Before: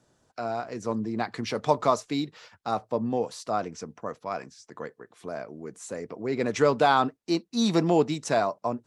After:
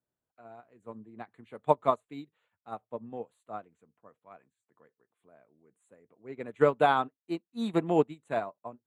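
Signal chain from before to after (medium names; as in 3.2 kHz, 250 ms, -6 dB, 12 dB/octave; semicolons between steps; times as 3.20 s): Butterworth band-stop 5.3 kHz, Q 1.2; upward expansion 2.5:1, over -34 dBFS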